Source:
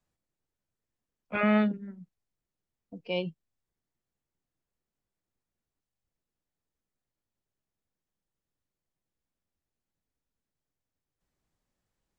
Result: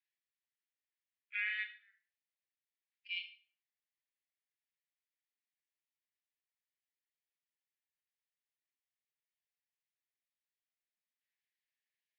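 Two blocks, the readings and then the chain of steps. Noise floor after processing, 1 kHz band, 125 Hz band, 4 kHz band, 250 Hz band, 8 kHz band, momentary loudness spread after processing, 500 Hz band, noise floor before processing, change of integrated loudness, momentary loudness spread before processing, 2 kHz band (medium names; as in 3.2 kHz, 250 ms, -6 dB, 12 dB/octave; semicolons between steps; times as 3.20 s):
under -85 dBFS, under -25 dB, under -40 dB, -2.5 dB, under -40 dB, no reading, 8 LU, under -40 dB, under -85 dBFS, -10.0 dB, 19 LU, -3.0 dB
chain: steep high-pass 1.7 kHz 72 dB/octave; distance through air 280 m; Schroeder reverb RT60 0.39 s, combs from 32 ms, DRR 7 dB; trim +1.5 dB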